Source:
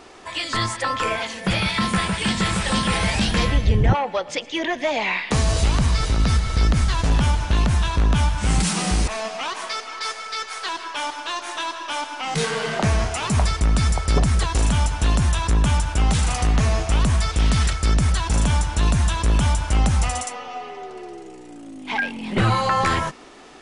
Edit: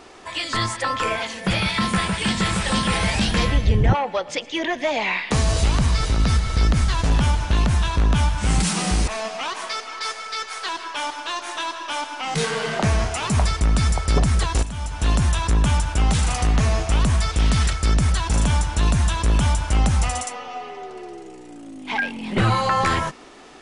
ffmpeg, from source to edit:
ffmpeg -i in.wav -filter_complex "[0:a]asplit=2[link_01][link_02];[link_01]atrim=end=14.63,asetpts=PTS-STARTPTS,afade=type=out:start_time=14.626:duration=0.004:curve=hsin:silence=0.237137[link_03];[link_02]atrim=start=14.63,asetpts=PTS-STARTPTS,afade=type=in:duration=0.46:curve=qua:silence=0.237137[link_04];[link_03][link_04]concat=n=2:v=0:a=1" out.wav

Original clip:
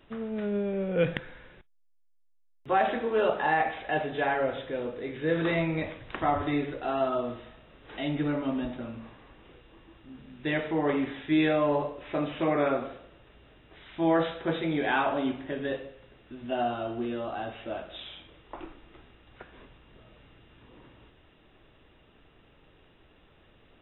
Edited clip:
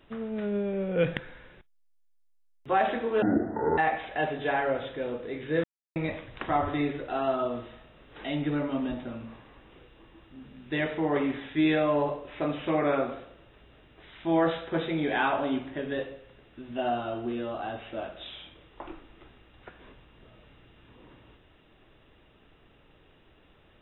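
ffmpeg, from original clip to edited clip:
ffmpeg -i in.wav -filter_complex "[0:a]asplit=5[link_01][link_02][link_03][link_04][link_05];[link_01]atrim=end=3.224[link_06];[link_02]atrim=start=3.22:end=3.51,asetpts=PTS-STARTPTS,asetrate=22932,aresample=44100,atrim=end_sample=24594,asetpts=PTS-STARTPTS[link_07];[link_03]atrim=start=3.506:end=5.37,asetpts=PTS-STARTPTS,afade=type=out:start_time=1.86:duration=0.004:curve=hsin[link_08];[link_04]atrim=start=5.37:end=5.69,asetpts=PTS-STARTPTS,volume=0[link_09];[link_05]atrim=start=5.69,asetpts=PTS-STARTPTS,afade=type=in:duration=0.004:curve=hsin[link_10];[link_06][link_07]acrossfade=duration=0.004:curve1=hsin:curve2=hsin[link_11];[link_08][link_09][link_10]concat=n=3:v=0:a=1[link_12];[link_11][link_12]acrossfade=duration=0.004:curve1=hsin:curve2=hsin" out.wav

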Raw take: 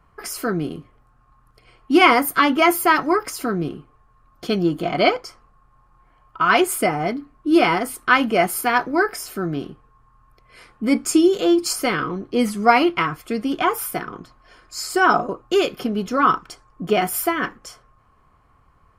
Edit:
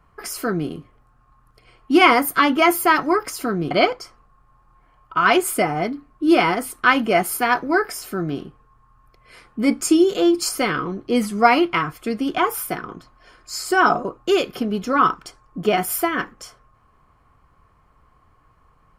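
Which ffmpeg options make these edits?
ffmpeg -i in.wav -filter_complex "[0:a]asplit=2[link_01][link_02];[link_01]atrim=end=3.712[link_03];[link_02]atrim=start=4.948[link_04];[link_03][link_04]acrossfade=duration=0.004:curve1=hsin:curve2=hsin" out.wav

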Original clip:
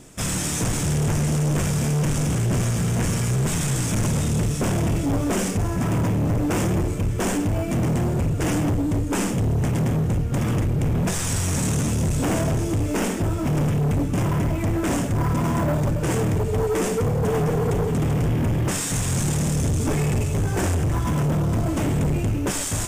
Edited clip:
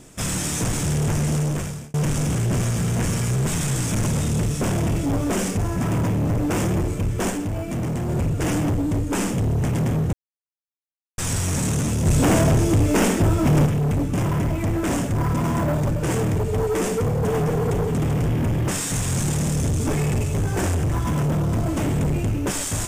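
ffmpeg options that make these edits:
ffmpeg -i in.wav -filter_complex "[0:a]asplit=8[link_01][link_02][link_03][link_04][link_05][link_06][link_07][link_08];[link_01]atrim=end=1.94,asetpts=PTS-STARTPTS,afade=type=out:start_time=1.39:duration=0.55[link_09];[link_02]atrim=start=1.94:end=7.302,asetpts=PTS-STARTPTS,afade=type=in:duration=0.004:curve=hsin[link_10];[link_03]atrim=start=7.298:end=8.092,asetpts=PTS-STARTPTS,volume=-3.5dB[link_11];[link_04]atrim=start=8.088:end=10.13,asetpts=PTS-STARTPTS,afade=type=out:start_time=2.038:duration=0.004:curve=hsin[link_12];[link_05]atrim=start=10.13:end=11.18,asetpts=PTS-STARTPTS,volume=0[link_13];[link_06]atrim=start=11.18:end=12.062,asetpts=PTS-STARTPTS,afade=type=in:duration=0.004:curve=hsin[link_14];[link_07]atrim=start=12.058:end=13.662,asetpts=PTS-STARTPTS,volume=5dB[link_15];[link_08]atrim=start=13.658[link_16];[link_09][link_10]concat=n=2:v=0:a=1[link_17];[link_17][link_11]acrossfade=duration=0.004:curve1=hsin:curve2=hsin[link_18];[link_12][link_13][link_14]concat=n=3:v=0:a=1[link_19];[link_18][link_19]acrossfade=duration=0.004:curve1=hsin:curve2=hsin[link_20];[link_20][link_15]acrossfade=duration=0.004:curve1=hsin:curve2=hsin[link_21];[link_21][link_16]acrossfade=duration=0.004:curve1=hsin:curve2=hsin" out.wav

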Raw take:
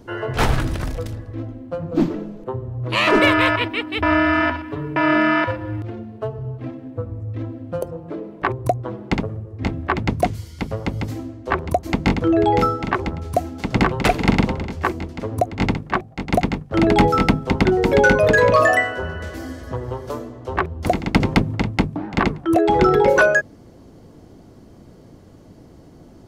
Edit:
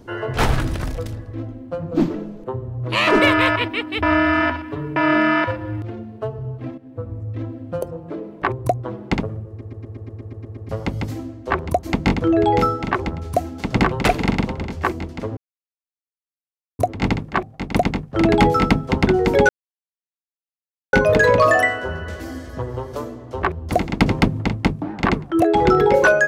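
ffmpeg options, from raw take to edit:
ffmpeg -i in.wav -filter_complex "[0:a]asplit=16[link_01][link_02][link_03][link_04][link_05][link_06][link_07][link_08][link_09][link_10][link_11][link_12][link_13][link_14][link_15][link_16];[link_01]atrim=end=6.78,asetpts=PTS-STARTPTS,afade=type=out:start_time=6.776:duration=0.004:curve=hsin:silence=0.251189[link_17];[link_02]atrim=start=6.78:end=9.612,asetpts=PTS-STARTPTS,afade=type=in:duration=0.33:silence=0.251189[link_18];[link_03]atrim=start=9.488:end=9.612[link_19];[link_04]atrim=start=9.488:end=9.612[link_20];[link_05]atrim=start=9.488:end=9.612[link_21];[link_06]atrim=start=9.488:end=9.612[link_22];[link_07]atrim=start=9.488:end=9.612[link_23];[link_08]atrim=start=9.488:end=9.612[link_24];[link_09]atrim=start=9.488:end=9.612[link_25];[link_10]atrim=start=9.488:end=9.612[link_26];[link_11]atrim=start=9.488:end=9.612[link_27];[link_12]atrim=start=10.688:end=14.262[link_28];[link_13]atrim=start=14.258:end=14.592,asetpts=PTS-STARTPTS,volume=-3.5dB[link_29];[link_14]atrim=start=14.588:end=15.37,asetpts=PTS-STARTPTS,afade=type=out:start_time=0.778:duration=0.004:curve=hsin,apad=pad_dur=1.42[link_30];[link_15]atrim=start=15.37:end=18.07,asetpts=PTS-STARTPTS,afade=type=in:duration=0.004:curve=hsin,afade=type=out:start_time=2.696:duration=0.004:curve=hsin,apad=pad_dur=1.44[link_31];[link_16]atrim=start=18.07,asetpts=PTS-STARTPTS,afade=type=in:duration=0.004:curve=hsin[link_32];[link_17][link_18]concat=n=2:v=0:a=1[link_33];[link_33][link_19]acrossfade=duration=0.004:curve1=hsin:curve2=hsin[link_34];[link_34][link_20]acrossfade=duration=0.004:curve1=hsin:curve2=hsin[link_35];[link_35][link_21]acrossfade=duration=0.004:curve1=hsin:curve2=hsin[link_36];[link_36][link_22]acrossfade=duration=0.004:curve1=hsin:curve2=hsin[link_37];[link_37][link_23]acrossfade=duration=0.004:curve1=hsin:curve2=hsin[link_38];[link_38][link_24]acrossfade=duration=0.004:curve1=hsin:curve2=hsin[link_39];[link_39][link_25]acrossfade=duration=0.004:curve1=hsin:curve2=hsin[link_40];[link_40][link_26]acrossfade=duration=0.004:curve1=hsin:curve2=hsin[link_41];[link_41][link_27]acrossfade=duration=0.004:curve1=hsin:curve2=hsin[link_42];[link_42][link_28]acrossfade=duration=0.004:curve1=hsin:curve2=hsin[link_43];[link_43][link_29]acrossfade=duration=0.004:curve1=hsin:curve2=hsin[link_44];[link_30][link_31][link_32]concat=n=3:v=0:a=1[link_45];[link_44][link_45]acrossfade=duration=0.004:curve1=hsin:curve2=hsin" out.wav

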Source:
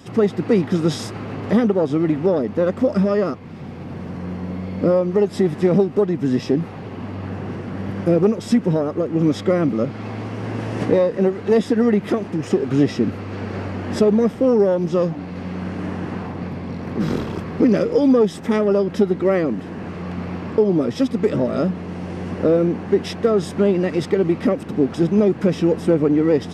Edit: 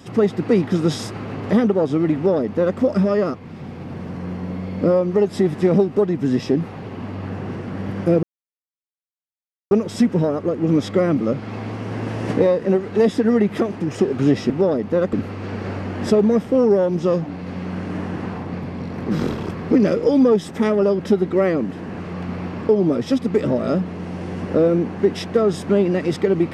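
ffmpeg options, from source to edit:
ffmpeg -i in.wav -filter_complex "[0:a]asplit=4[link_01][link_02][link_03][link_04];[link_01]atrim=end=8.23,asetpts=PTS-STARTPTS,afade=type=out:start_time=8.226:duration=0.004:curve=hsin,apad=pad_dur=1.48[link_05];[link_02]atrim=start=8.23:end=13.022,asetpts=PTS-STARTPTS,afade=type=in:duration=0.004:curve=hsin[link_06];[link_03]atrim=start=2.148:end=2.782[link_07];[link_04]atrim=start=13.018[link_08];[link_05][link_06]concat=n=2:v=0:a=1[link_09];[link_09][link_07]acrossfade=duration=0.004:curve1=hsin:curve2=hsin[link_10];[link_10][link_08]acrossfade=duration=0.004:curve1=hsin:curve2=hsin" out.wav

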